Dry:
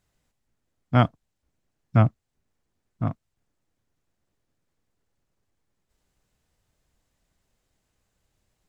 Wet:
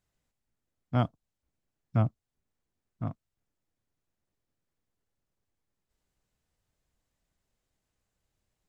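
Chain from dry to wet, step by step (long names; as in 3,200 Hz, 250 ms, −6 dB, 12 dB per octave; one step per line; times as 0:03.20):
dynamic equaliser 1,900 Hz, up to −7 dB, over −42 dBFS, Q 1.3
level −7.5 dB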